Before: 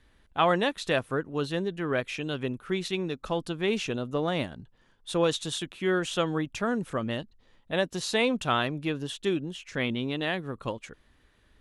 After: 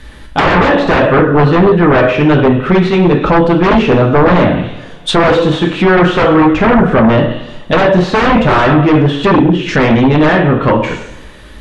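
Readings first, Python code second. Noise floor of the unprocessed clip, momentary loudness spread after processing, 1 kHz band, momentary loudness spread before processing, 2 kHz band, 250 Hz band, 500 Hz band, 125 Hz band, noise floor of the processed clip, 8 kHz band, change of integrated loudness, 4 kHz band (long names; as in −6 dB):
−64 dBFS, 6 LU, +20.5 dB, 10 LU, +18.5 dB, +21.5 dB, +19.0 dB, +23.0 dB, −32 dBFS, can't be measured, +19.5 dB, +12.5 dB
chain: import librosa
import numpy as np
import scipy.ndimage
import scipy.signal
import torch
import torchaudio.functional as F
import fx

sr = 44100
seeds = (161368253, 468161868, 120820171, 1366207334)

y = fx.rev_double_slope(x, sr, seeds[0], early_s=0.65, late_s=2.1, knee_db=-24, drr_db=1.0)
y = fx.fold_sine(y, sr, drive_db=14, ceiling_db=-10.5)
y = fx.env_lowpass_down(y, sr, base_hz=1600.0, full_db=-13.5)
y = y * librosa.db_to_amplitude(7.0)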